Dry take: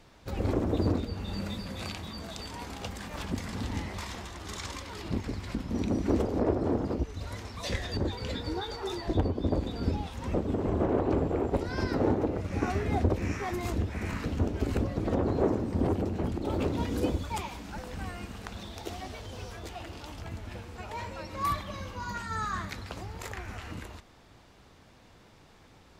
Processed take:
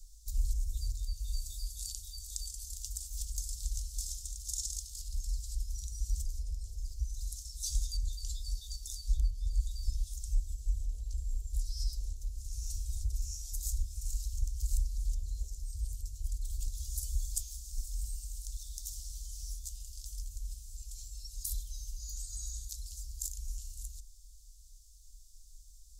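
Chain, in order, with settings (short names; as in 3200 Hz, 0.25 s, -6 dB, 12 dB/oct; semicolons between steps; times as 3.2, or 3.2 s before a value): inverse Chebyshev band-stop 130–2200 Hz, stop band 60 dB; high shelf 7700 Hz -5.5 dB; gain +14.5 dB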